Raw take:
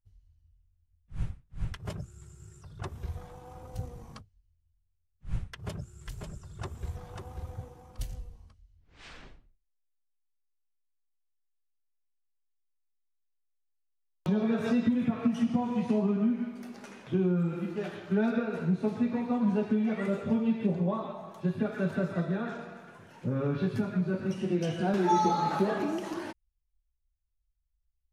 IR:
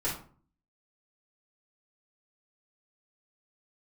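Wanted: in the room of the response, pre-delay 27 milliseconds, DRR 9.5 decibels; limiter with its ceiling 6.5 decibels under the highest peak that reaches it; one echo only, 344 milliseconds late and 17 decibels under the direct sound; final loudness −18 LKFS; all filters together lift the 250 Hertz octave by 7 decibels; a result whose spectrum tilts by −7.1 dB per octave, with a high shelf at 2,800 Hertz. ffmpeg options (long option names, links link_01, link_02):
-filter_complex "[0:a]equalizer=frequency=250:width_type=o:gain=8.5,highshelf=frequency=2800:gain=6,alimiter=limit=-15dB:level=0:latency=1,aecho=1:1:344:0.141,asplit=2[link_01][link_02];[1:a]atrim=start_sample=2205,adelay=27[link_03];[link_02][link_03]afir=irnorm=-1:irlink=0,volume=-16dB[link_04];[link_01][link_04]amix=inputs=2:normalize=0,volume=7dB"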